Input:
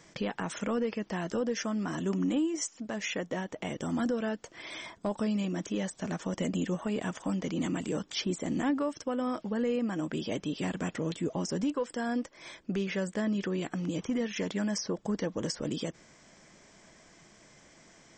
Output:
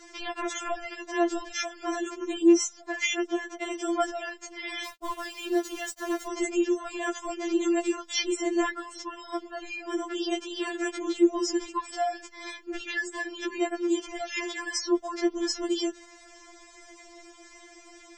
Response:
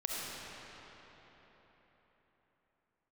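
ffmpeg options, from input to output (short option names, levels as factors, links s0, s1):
-filter_complex "[0:a]asettb=1/sr,asplit=3[s0][s1][s2];[s0]atrim=end=4.854[s3];[s1]atrim=start=4.85:end=6.27,asetpts=PTS-STARTPTS,afade=t=in:d=0.004:c=qsin,afade=t=out:st=1.416:d=0.004:c=qsin,aeval=exprs='val(0)*gte(abs(val(0)),0.0075)':c=same[s4];[s2]atrim=start=6.266[s5];[s3][s4]acrossfade=d=0.004:c1=hsin:c2=qsin[s6];[s6][s5]acrossfade=d=0.004:c1=qsin:c2=hsin,afftfilt=real='re*4*eq(mod(b,16),0)':imag='im*4*eq(mod(b,16),0)':win_size=2048:overlap=0.75,volume=2.66"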